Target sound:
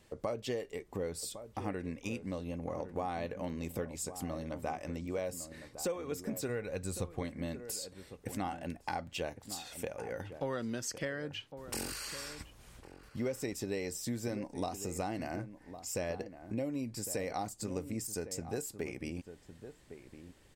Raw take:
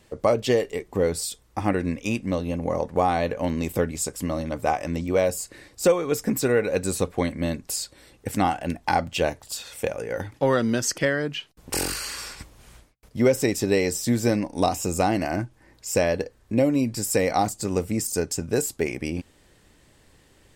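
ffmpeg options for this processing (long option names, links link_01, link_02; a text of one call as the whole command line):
ffmpeg -i in.wav -filter_complex "[0:a]acompressor=threshold=-34dB:ratio=2,asplit=2[link_01][link_02];[link_02]adelay=1108,volume=-11dB,highshelf=frequency=4000:gain=-24.9[link_03];[link_01][link_03]amix=inputs=2:normalize=0,asplit=3[link_04][link_05][link_06];[link_04]afade=type=out:start_time=6.48:duration=0.02[link_07];[link_05]asubboost=boost=2:cutoff=170,afade=type=in:start_time=6.48:duration=0.02,afade=type=out:start_time=7.21:duration=0.02[link_08];[link_06]afade=type=in:start_time=7.21:duration=0.02[link_09];[link_07][link_08][link_09]amix=inputs=3:normalize=0,volume=-6.5dB" out.wav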